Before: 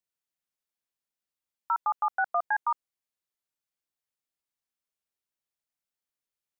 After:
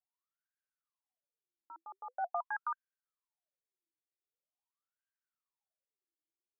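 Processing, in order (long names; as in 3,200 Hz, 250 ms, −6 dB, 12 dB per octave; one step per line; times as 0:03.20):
LFO wah 0.44 Hz 320–1,600 Hz, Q 18
level +11 dB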